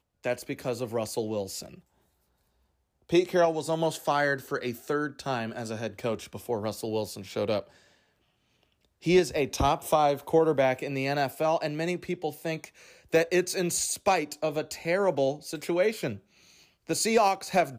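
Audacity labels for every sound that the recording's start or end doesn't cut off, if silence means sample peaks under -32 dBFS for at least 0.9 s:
3.120000	7.600000	sound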